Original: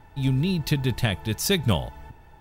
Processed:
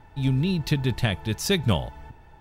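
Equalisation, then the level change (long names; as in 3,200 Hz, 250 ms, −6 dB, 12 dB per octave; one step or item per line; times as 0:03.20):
high-shelf EQ 10,000 Hz −9.5 dB
0.0 dB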